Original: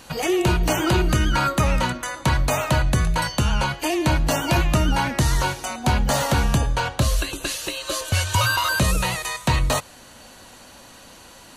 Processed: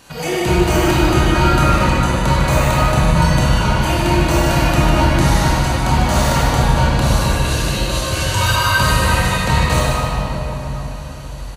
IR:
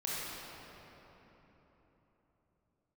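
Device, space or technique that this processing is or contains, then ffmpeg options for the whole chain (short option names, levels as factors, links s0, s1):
cave: -filter_complex "[0:a]aecho=1:1:151:0.398[s0];[1:a]atrim=start_sample=2205[s1];[s0][s1]afir=irnorm=-1:irlink=0,volume=1.12"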